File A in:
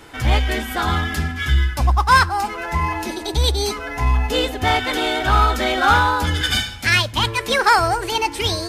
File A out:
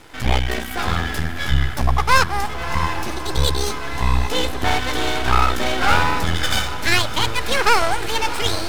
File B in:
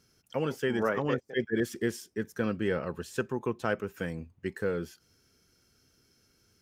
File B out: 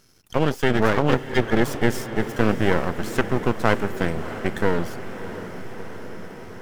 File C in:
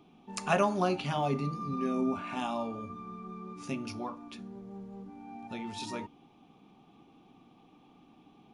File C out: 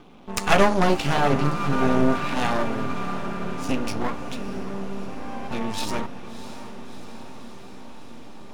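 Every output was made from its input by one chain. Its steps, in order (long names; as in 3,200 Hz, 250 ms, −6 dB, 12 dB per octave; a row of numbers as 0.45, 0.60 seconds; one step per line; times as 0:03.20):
half-wave rectification
feedback delay with all-pass diffusion 657 ms, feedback 71%, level −12.5 dB
normalise the peak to −1.5 dBFS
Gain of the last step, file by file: +2.0, +12.5, +14.5 decibels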